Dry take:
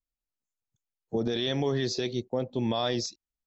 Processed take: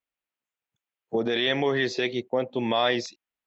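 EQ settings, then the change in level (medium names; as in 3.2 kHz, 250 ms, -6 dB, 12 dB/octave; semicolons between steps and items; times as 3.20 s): high-pass 490 Hz 6 dB/octave; resonant high shelf 3.7 kHz -9.5 dB, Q 1.5; dynamic bell 2 kHz, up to +5 dB, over -53 dBFS, Q 3.8; +7.5 dB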